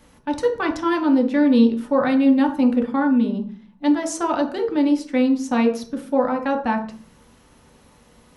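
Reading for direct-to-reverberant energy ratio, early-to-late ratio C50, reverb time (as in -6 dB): 1.0 dB, 9.0 dB, 0.45 s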